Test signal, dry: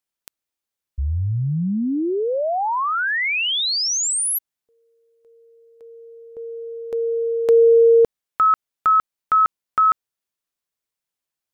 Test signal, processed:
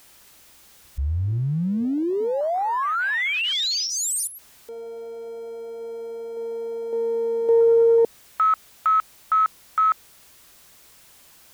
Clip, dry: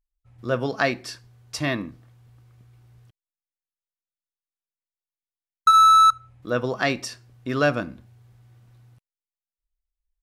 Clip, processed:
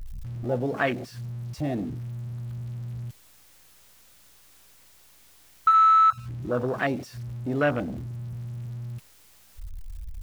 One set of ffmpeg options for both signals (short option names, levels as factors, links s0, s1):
-af "aeval=exprs='val(0)+0.5*0.0668*sgn(val(0))':c=same,aeval=exprs='val(0)+0.00316*(sin(2*PI*60*n/s)+sin(2*PI*2*60*n/s)/2+sin(2*PI*3*60*n/s)/3+sin(2*PI*4*60*n/s)/4+sin(2*PI*5*60*n/s)/5)':c=same,afwtdn=0.0891,volume=0.596"